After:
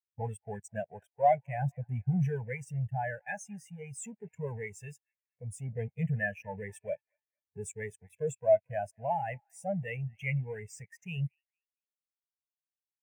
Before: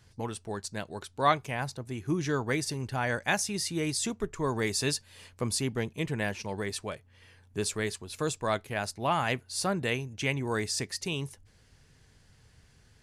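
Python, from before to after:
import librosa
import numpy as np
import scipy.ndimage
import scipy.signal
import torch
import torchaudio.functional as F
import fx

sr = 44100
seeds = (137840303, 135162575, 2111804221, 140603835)

p1 = scipy.signal.sosfilt(scipy.signal.butter(2, 6600.0, 'lowpass', fs=sr, output='sos'), x)
p2 = fx.fuzz(p1, sr, gain_db=46.0, gate_db=-44.0)
p3 = p1 + (p2 * 10.0 ** (-11.5 / 20.0))
p4 = scipy.signal.sosfilt(scipy.signal.butter(2, 100.0, 'highpass', fs=sr, output='sos'), p3)
p5 = fx.high_shelf(p4, sr, hz=4800.0, db=11.5)
p6 = fx.fixed_phaser(p5, sr, hz=1200.0, stages=6)
p7 = fx.echo_wet_bandpass(p6, sr, ms=228, feedback_pct=55, hz=1500.0, wet_db=-14)
p8 = fx.rider(p7, sr, range_db=3, speed_s=0.5)
p9 = fx.spectral_expand(p8, sr, expansion=2.5)
y = p9 * 10.0 ** (-5.0 / 20.0)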